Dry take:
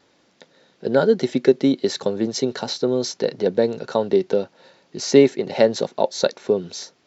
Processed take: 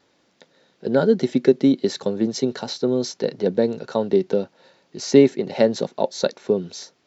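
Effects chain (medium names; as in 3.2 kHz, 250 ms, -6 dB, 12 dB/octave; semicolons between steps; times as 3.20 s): dynamic bell 200 Hz, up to +6 dB, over -29 dBFS, Q 0.85; trim -3 dB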